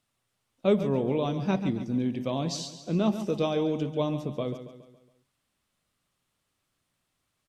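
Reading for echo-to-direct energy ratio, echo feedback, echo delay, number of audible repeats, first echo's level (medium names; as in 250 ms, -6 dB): -10.0 dB, 47%, 139 ms, 4, -11.0 dB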